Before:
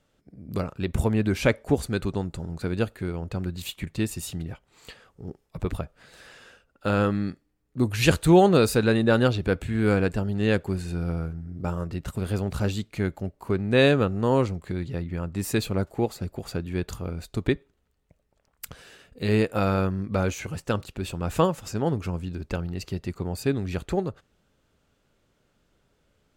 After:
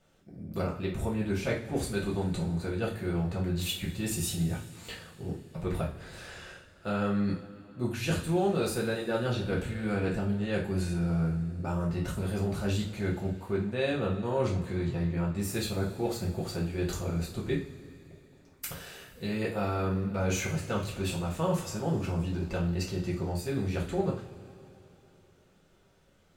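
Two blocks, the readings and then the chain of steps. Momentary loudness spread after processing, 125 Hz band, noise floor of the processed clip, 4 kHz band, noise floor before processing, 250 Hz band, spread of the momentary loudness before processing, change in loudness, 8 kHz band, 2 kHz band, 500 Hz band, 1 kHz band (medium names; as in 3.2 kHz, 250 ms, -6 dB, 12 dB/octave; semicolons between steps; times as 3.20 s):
10 LU, -4.0 dB, -61 dBFS, -4.5 dB, -70 dBFS, -5.0 dB, 13 LU, -5.5 dB, -1.0 dB, -7.0 dB, -7.0 dB, -7.0 dB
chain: reverse; compression 6:1, threshold -30 dBFS, peak gain reduction 17.5 dB; reverse; two-slope reverb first 0.37 s, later 3.4 s, from -21 dB, DRR -5 dB; trim -2.5 dB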